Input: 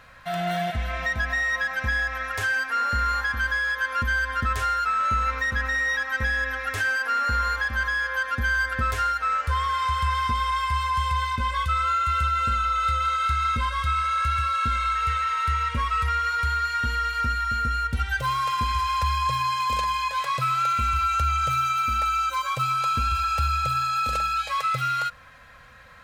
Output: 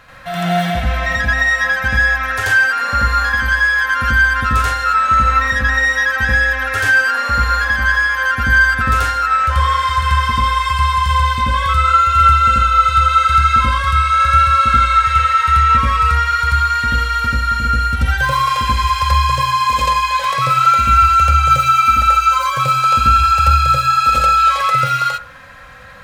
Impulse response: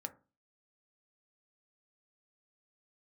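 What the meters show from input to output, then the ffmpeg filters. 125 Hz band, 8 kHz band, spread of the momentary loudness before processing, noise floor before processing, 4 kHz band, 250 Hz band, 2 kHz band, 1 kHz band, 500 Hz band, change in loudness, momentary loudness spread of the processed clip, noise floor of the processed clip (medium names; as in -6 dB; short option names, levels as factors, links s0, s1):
+11.0 dB, +10.0 dB, 3 LU, -35 dBFS, +9.5 dB, +11.5 dB, +11.0 dB, +11.0 dB, +10.0 dB, +11.0 dB, 5 LU, -22 dBFS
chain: -filter_complex "[0:a]asplit=2[s0][s1];[1:a]atrim=start_sample=2205,adelay=85[s2];[s1][s2]afir=irnorm=-1:irlink=0,volume=2.24[s3];[s0][s3]amix=inputs=2:normalize=0,volume=1.78"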